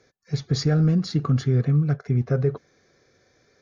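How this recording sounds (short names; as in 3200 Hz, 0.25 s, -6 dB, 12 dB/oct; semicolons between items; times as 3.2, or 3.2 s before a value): noise floor -64 dBFS; spectral tilt -8.0 dB/oct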